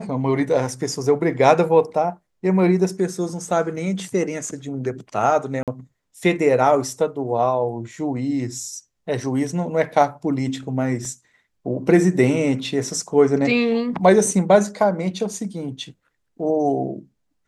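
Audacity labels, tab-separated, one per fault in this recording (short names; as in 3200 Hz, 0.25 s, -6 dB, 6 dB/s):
5.630000	5.680000	gap 47 ms
11.050000	11.050000	gap 3.1 ms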